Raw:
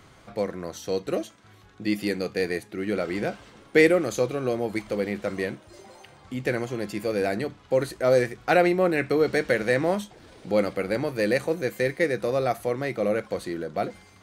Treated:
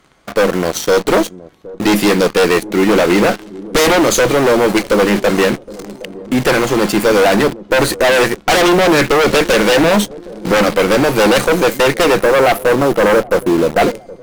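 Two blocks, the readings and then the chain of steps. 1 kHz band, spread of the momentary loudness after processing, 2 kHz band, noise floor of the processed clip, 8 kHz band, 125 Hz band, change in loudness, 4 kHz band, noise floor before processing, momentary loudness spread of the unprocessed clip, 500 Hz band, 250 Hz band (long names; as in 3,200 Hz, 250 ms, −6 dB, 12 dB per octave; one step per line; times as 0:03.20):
+16.0 dB, 6 LU, +13.5 dB, −38 dBFS, +21.0 dB, +11.5 dB, +13.0 dB, +20.0 dB, −53 dBFS, 10 LU, +12.5 dB, +13.5 dB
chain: time-frequency box erased 0:12.22–0:13.81, 1,400–9,200 Hz
leveller curve on the samples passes 3
in parallel at −3 dB: bit reduction 5 bits
on the sum: harmonic generator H 4 −13 dB, 5 −6 dB, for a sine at −0.5 dBFS
parametric band 100 Hz −13 dB 0.57 octaves
on a send: delay with a low-pass on its return 768 ms, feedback 43%, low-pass 560 Hz, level −16.5 dB
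on the sum: level −5 dB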